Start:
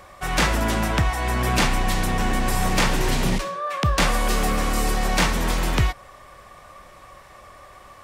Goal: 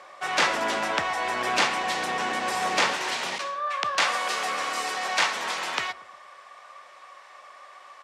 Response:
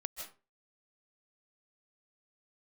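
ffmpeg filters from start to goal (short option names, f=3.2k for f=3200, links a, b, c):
-filter_complex "[0:a]asetnsamples=n=441:p=0,asendcmd='2.93 highpass f 770',highpass=470,lowpass=6.3k,asplit=2[a][b];[b]adelay=116,lowpass=f=910:p=1,volume=-13.5dB,asplit=2[c][d];[d]adelay=116,lowpass=f=910:p=1,volume=0.49,asplit=2[e][f];[f]adelay=116,lowpass=f=910:p=1,volume=0.49,asplit=2[g][h];[h]adelay=116,lowpass=f=910:p=1,volume=0.49,asplit=2[i][j];[j]adelay=116,lowpass=f=910:p=1,volume=0.49[k];[a][c][e][g][i][k]amix=inputs=6:normalize=0"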